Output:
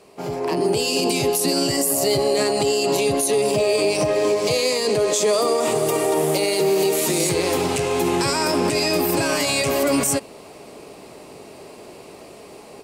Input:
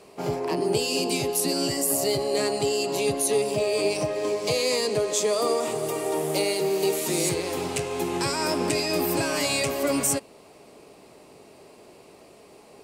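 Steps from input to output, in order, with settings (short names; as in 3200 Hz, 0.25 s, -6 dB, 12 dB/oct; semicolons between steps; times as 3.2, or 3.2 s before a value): limiter -20 dBFS, peak gain reduction 10.5 dB; AGC gain up to 9 dB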